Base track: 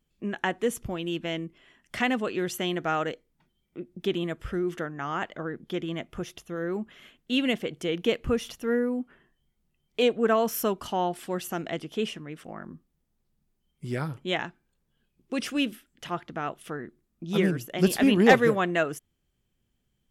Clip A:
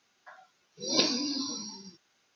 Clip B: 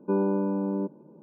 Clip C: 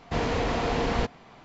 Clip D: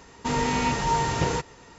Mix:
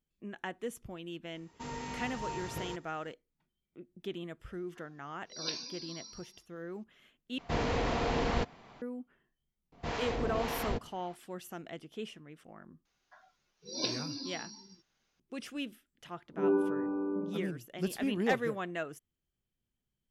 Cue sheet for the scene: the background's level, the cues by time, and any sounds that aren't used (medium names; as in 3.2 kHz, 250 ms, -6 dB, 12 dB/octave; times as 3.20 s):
base track -12 dB
1.35 s: add D -16 dB
4.49 s: add A -10.5 dB + peaking EQ 220 Hz -13.5 dB 2.8 oct
7.38 s: replace with C -4.5 dB
9.72 s: add C -5 dB + harmonic tremolo 1.8 Hz, crossover 640 Hz
12.85 s: add A -8.5 dB
16.29 s: add B -11 dB + spring tank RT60 1 s, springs 48 ms, chirp 80 ms, DRR -9 dB